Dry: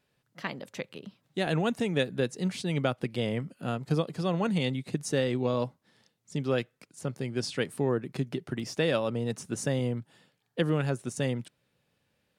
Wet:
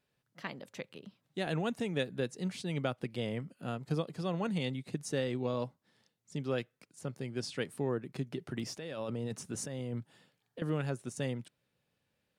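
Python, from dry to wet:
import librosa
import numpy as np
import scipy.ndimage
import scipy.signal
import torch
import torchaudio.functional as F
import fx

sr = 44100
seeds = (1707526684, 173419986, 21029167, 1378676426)

y = fx.over_compress(x, sr, threshold_db=-32.0, ratio=-1.0, at=(8.38, 10.62))
y = y * 10.0 ** (-6.0 / 20.0)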